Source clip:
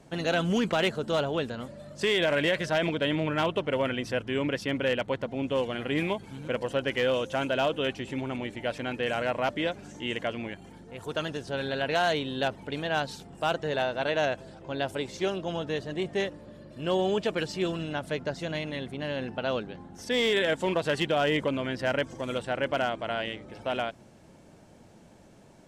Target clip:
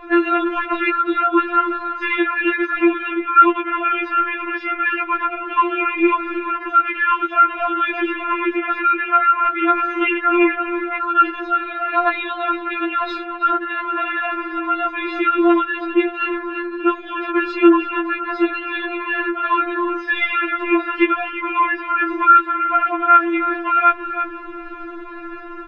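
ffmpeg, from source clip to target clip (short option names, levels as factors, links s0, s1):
-af "lowpass=f=2600:w=0.5412,lowpass=f=2600:w=1.3066,equalizer=f=1500:w=1.8:g=12.5,aecho=1:1:6.6:0.92,areverse,acompressor=threshold=0.0316:ratio=8,areverse,aecho=1:1:329:0.178,alimiter=level_in=23.7:limit=0.891:release=50:level=0:latency=1,afftfilt=real='re*4*eq(mod(b,16),0)':imag='im*4*eq(mod(b,16),0)':win_size=2048:overlap=0.75,volume=0.562"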